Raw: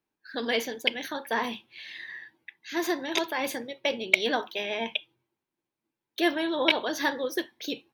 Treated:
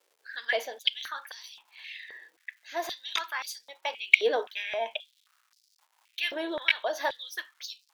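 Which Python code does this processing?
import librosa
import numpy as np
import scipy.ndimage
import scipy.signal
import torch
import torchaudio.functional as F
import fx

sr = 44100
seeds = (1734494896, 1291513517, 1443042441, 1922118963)

y = fx.dmg_crackle(x, sr, seeds[0], per_s=430.0, level_db=-49.0)
y = fx.filter_held_highpass(y, sr, hz=3.8, low_hz=460.0, high_hz=4900.0)
y = y * 10.0 ** (-6.0 / 20.0)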